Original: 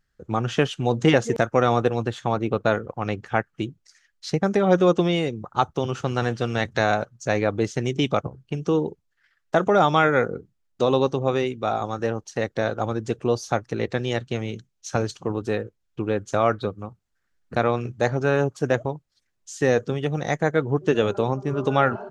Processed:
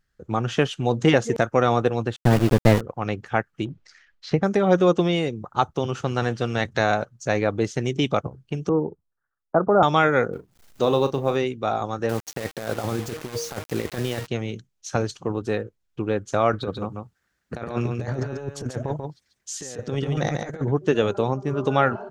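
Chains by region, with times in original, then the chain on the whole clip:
2.16–2.81 minimum comb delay 0.35 ms + low shelf 310 Hz +10 dB + sample gate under -24 dBFS
3.65–4.42 LPF 3400 Hz + transient shaper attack +3 dB, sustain +10 dB
8.69–9.83 block floating point 7-bit + steep low-pass 1400 Hz 48 dB/oct + three-band expander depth 40%
10.33–11.36 G.711 law mismatch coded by A + upward compressor, threshold -36 dBFS + doubler 36 ms -11 dB
12.09–14.27 de-hum 156 Hz, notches 20 + negative-ratio compressor -27 dBFS, ratio -0.5 + requantised 6-bit, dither none
16.53–20.72 HPF 41 Hz + negative-ratio compressor -27 dBFS, ratio -0.5 + echo 0.14 s -5 dB
whole clip: dry

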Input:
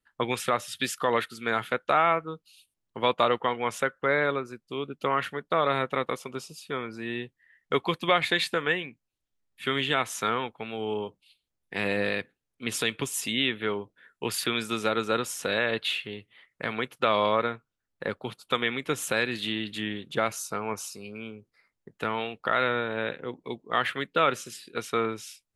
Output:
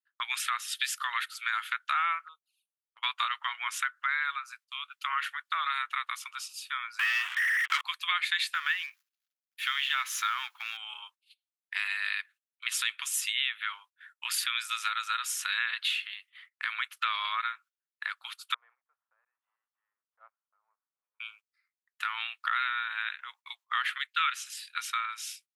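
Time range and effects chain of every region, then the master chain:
2.27–3.03 envelope flanger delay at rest 2.7 ms, full sweep at -36 dBFS + bell 5000 Hz -10 dB 2.3 oct
6.99–7.81 zero-crossing step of -30.5 dBFS + steep low-pass 3400 Hz 96 dB/oct + sample leveller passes 3
8.54–10.77 G.711 law mismatch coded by mu + bell 8400 Hz -10.5 dB 0.26 oct
18.54–21.2 block floating point 3-bit + ladder low-pass 650 Hz, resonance 40%
23.98–24.57 HPF 1000 Hz + dynamic EQ 2900 Hz, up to +4 dB, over -39 dBFS, Q 0.72 + three-band expander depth 40%
whole clip: steep high-pass 1200 Hz 36 dB/oct; compressor 2:1, threshold -34 dBFS; gate -58 dBFS, range -16 dB; gain +4 dB

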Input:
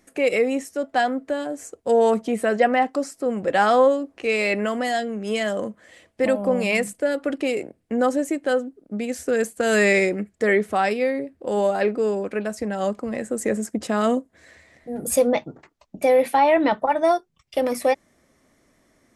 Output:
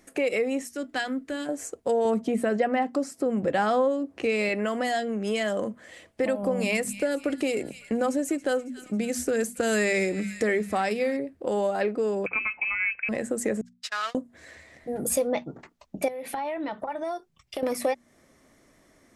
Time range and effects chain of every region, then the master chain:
0.67–1.49 bell 690 Hz -13 dB 1.5 oct + notches 60/120/180/240/300/360/420 Hz
2.05–4.49 HPF 86 Hz + low shelf 250 Hz +11 dB
6.43–11.17 tone controls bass +6 dB, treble +5 dB + notches 50/100/150/200/250 Hz + thin delay 0.275 s, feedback 62%, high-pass 1900 Hz, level -17.5 dB
12.26–13.09 HPF 160 Hz + inverted band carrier 2800 Hz
13.61–14.15 switching spikes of -21 dBFS + Chebyshev band-pass 1400–4700 Hz + gate -35 dBFS, range -58 dB
16.08–17.63 notch 480 Hz, Q 16 + compressor 8:1, threshold -30 dBFS
whole clip: notches 60/120/180/240 Hz; compressor 2.5:1, threshold -28 dBFS; gain +2 dB

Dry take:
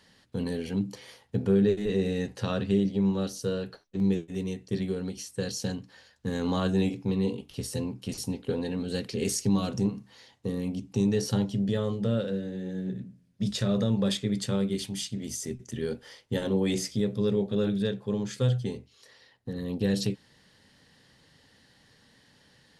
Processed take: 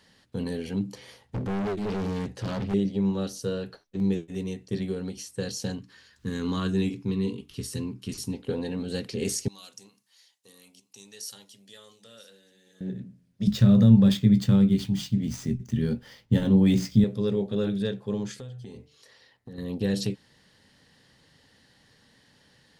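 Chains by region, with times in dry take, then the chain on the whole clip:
0.97–2.74 low shelf 230 Hz +6.5 dB + hard clip -27 dBFS + Doppler distortion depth 0.32 ms
5.79–8.33 band shelf 660 Hz -10 dB 1 oct + upward compressor, threshold -50 dBFS
9.48–12.81 differentiator + echo 0.973 s -20.5 dB
13.47–17.04 median filter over 5 samples + resonant low shelf 280 Hz +9 dB, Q 1.5 + doubler 18 ms -14 dB
18.31–19.58 compressor 12:1, threshold -37 dBFS + de-hum 147.8 Hz, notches 17
whole clip: dry

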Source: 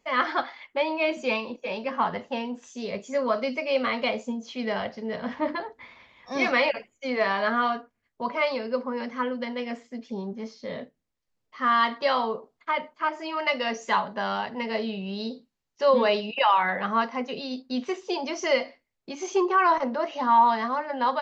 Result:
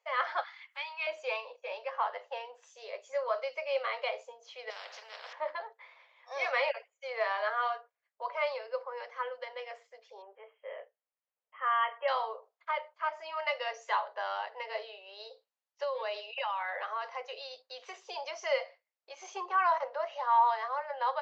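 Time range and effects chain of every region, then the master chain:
0.43–1.07 HPF 1100 Hz 24 dB/oct + upward compressor, threshold -41 dBFS + high shelf 3700 Hz +5 dB
4.7–5.33 upward compressor, threshold -33 dBFS + spectral compressor 4:1
10.22–12.08 brick-wall FIR band-pass 230–3300 Hz + air absorption 73 m
15.83–18.31 high shelf 3600 Hz +5.5 dB + compressor, threshold -24 dBFS
whole clip: steep high-pass 490 Hz 48 dB/oct; high shelf 4300 Hz -7.5 dB; gain -6 dB

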